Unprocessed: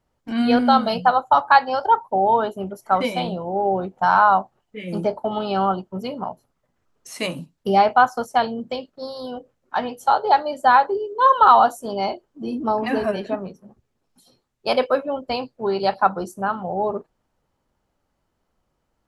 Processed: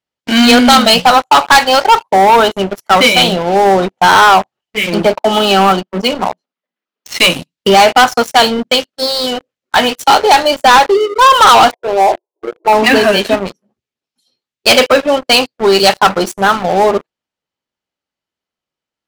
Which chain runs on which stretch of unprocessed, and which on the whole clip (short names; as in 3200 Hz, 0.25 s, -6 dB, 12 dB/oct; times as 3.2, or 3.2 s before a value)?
4.86–7.2 steep high-pass 170 Hz 96 dB/oct + air absorption 110 m
11.71–12.73 dynamic EQ 840 Hz, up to +4 dB, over -33 dBFS, Q 2.2 + brick-wall FIR band-pass 340–1100 Hz
whole clip: weighting filter D; sample leveller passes 5; gain -3.5 dB